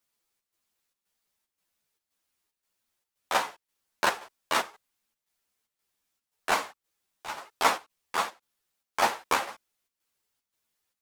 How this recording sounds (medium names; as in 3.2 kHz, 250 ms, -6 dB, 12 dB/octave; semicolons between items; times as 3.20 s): chopped level 1.9 Hz, depth 60%, duty 75%; a shimmering, thickened sound